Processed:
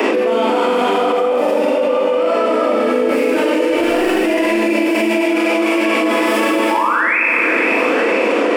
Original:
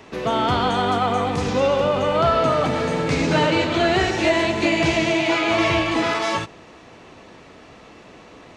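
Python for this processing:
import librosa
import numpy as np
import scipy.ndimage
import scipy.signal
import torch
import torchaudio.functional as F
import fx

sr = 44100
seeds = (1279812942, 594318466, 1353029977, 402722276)

p1 = fx.tracing_dist(x, sr, depth_ms=0.1)
p2 = scipy.signal.sosfilt(scipy.signal.butter(16, 210.0, 'highpass', fs=sr, output='sos'), p1)
p3 = fx.clip_hard(p2, sr, threshold_db=-23.5, at=(3.65, 4.24))
p4 = fx.spec_paint(p3, sr, seeds[0], shape='rise', start_s=6.7, length_s=0.48, low_hz=830.0, high_hz=2700.0, level_db=-25.0)
p5 = p4 + fx.echo_feedback(p4, sr, ms=483, feedback_pct=44, wet_db=-17.5, dry=0)
p6 = fx.spec_repair(p5, sr, seeds[1], start_s=1.33, length_s=0.76, low_hz=500.0, high_hz=1100.0, source='after')
p7 = fx.graphic_eq_31(p6, sr, hz=(315, 500, 2500, 4000, 6300), db=(9, 11, 5, -10, -10))
p8 = fx.rev_schroeder(p7, sr, rt60_s=1.3, comb_ms=32, drr_db=-8.0)
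p9 = fx.env_flatten(p8, sr, amount_pct=100)
y = F.gain(torch.from_numpy(p9), -13.5).numpy()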